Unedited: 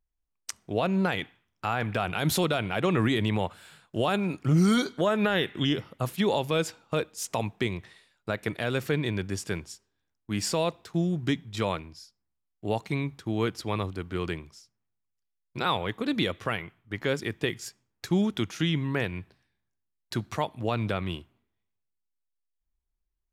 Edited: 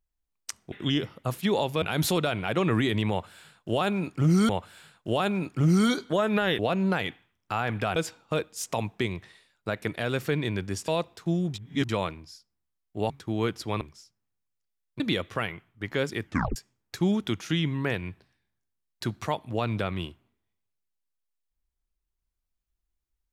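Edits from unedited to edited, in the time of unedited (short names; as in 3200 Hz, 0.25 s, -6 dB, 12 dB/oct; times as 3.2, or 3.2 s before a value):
0.72–2.09 swap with 5.47–6.57
3.37–4.76 loop, 2 plays
9.49–10.56 cut
11.22–11.57 reverse
12.78–13.09 cut
13.8–14.39 cut
15.58–16.1 cut
17.35 tape stop 0.31 s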